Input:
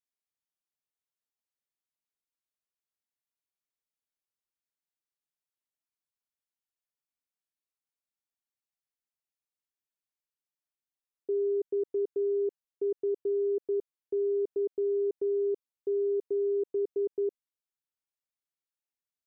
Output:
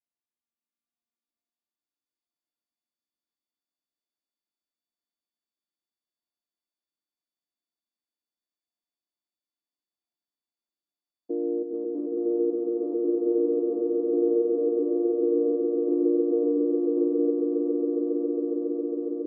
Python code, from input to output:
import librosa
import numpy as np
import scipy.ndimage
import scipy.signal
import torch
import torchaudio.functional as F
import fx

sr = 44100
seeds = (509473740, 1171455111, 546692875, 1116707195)

p1 = fx.chord_vocoder(x, sr, chord='major triad', root=58)
y = p1 + fx.echo_swell(p1, sr, ms=137, loudest=8, wet_db=-4.0, dry=0)